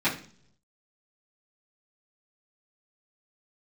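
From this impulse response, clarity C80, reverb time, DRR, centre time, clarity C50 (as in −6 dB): 15.0 dB, 0.55 s, −13.0 dB, 21 ms, 10.0 dB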